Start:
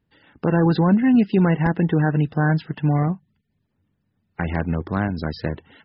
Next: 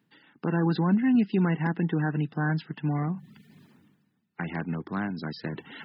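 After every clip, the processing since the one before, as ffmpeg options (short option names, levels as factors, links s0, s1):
-af "highpass=f=150:w=0.5412,highpass=f=150:w=1.3066,equalizer=f=560:t=o:w=0.69:g=-8,areverse,acompressor=mode=upward:threshold=0.0501:ratio=2.5,areverse,volume=0.531"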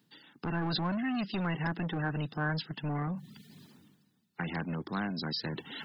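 -filter_complex "[0:a]highshelf=f=3000:t=q:w=1.5:g=7,acrossover=split=970[s0][s1];[s0]asoftclip=type=tanh:threshold=0.0282[s2];[s2][s1]amix=inputs=2:normalize=0"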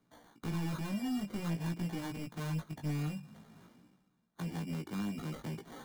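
-filter_complex "[0:a]acrossover=split=440[s0][s1];[s1]acompressor=threshold=0.00447:ratio=2.5[s2];[s0][s2]amix=inputs=2:normalize=0,acrusher=samples=17:mix=1:aa=0.000001,flanger=delay=16.5:depth=3.5:speed=0.5"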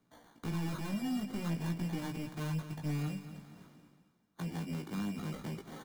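-af "aecho=1:1:227|454|681|908:0.251|0.108|0.0464|0.02"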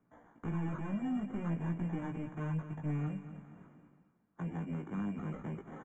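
-af "asuperstop=centerf=4600:order=4:qfactor=0.6,aresample=16000,aresample=44100"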